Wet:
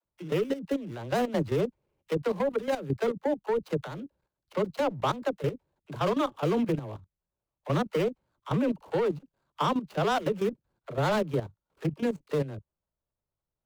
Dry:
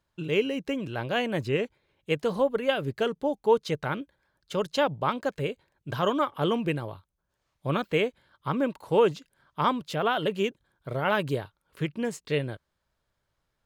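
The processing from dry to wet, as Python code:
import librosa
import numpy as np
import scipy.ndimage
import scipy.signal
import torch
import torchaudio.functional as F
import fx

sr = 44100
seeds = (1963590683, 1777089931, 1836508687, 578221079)

y = scipy.ndimage.median_filter(x, 25, mode='constant')
y = fx.leveller(y, sr, passes=1)
y = fx.dispersion(y, sr, late='lows', ms=49.0, hz=340.0)
y = fx.level_steps(y, sr, step_db=13)
y = F.gain(torch.from_numpy(y), 1.0).numpy()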